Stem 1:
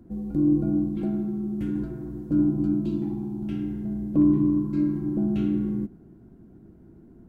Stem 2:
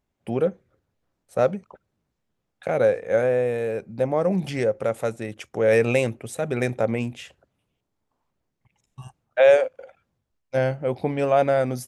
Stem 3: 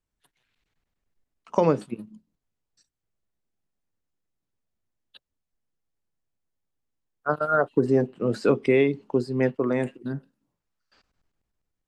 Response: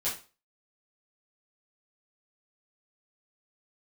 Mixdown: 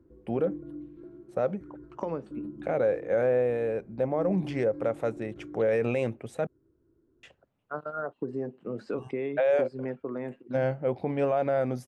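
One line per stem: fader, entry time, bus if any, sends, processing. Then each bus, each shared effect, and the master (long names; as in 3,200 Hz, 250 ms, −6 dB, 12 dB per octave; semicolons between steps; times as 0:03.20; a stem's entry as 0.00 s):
−2.5 dB, 0.00 s, no send, phaser with its sweep stopped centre 750 Hz, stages 6; automatic ducking −9 dB, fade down 0.25 s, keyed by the second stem
−2.0 dB, 0.00 s, muted 0:06.47–0:07.23, no send, no processing
−2.0 dB, 0.45 s, no send, downward compressor 2 to 1, threshold −34 dBFS, peak gain reduction 10.5 dB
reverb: not used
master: low-pass filter 1,600 Hz 6 dB per octave; low-shelf EQ 78 Hz −9.5 dB; brickwall limiter −17.5 dBFS, peak gain reduction 8 dB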